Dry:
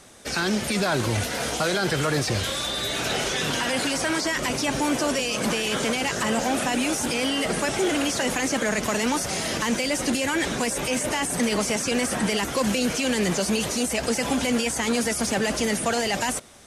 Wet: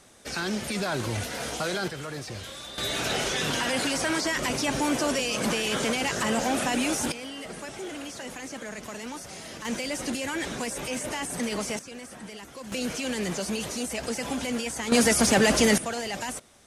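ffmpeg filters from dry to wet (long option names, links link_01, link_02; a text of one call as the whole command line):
ffmpeg -i in.wav -af "asetnsamples=nb_out_samples=441:pad=0,asendcmd='1.88 volume volume -12.5dB;2.78 volume volume -2dB;7.12 volume volume -13.5dB;9.65 volume volume -6.5dB;11.79 volume volume -17.5dB;12.72 volume volume -6.5dB;14.92 volume volume 4dB;15.78 volume volume -7.5dB',volume=-5.5dB" out.wav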